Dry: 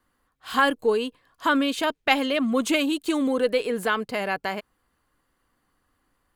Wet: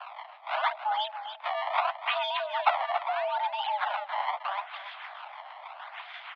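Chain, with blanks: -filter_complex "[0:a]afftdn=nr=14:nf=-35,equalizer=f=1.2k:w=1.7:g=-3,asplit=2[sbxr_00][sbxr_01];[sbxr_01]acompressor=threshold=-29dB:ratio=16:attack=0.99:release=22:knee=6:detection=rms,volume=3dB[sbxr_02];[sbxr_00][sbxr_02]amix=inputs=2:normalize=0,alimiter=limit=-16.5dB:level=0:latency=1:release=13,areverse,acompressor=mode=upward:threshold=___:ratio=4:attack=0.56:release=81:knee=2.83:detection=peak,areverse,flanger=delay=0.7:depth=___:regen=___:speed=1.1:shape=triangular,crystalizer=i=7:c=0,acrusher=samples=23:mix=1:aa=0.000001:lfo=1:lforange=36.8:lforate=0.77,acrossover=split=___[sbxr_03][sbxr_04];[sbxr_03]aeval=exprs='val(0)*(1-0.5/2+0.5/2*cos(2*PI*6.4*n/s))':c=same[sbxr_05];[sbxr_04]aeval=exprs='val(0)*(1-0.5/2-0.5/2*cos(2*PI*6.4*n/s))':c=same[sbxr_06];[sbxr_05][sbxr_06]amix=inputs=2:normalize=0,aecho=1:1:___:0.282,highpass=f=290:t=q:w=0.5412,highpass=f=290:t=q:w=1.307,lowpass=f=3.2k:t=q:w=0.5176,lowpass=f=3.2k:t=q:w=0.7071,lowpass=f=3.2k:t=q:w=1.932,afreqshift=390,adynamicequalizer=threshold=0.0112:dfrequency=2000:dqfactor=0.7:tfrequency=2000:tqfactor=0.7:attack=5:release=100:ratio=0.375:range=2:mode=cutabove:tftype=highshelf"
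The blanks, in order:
-28dB, 3.1, -73, 410, 281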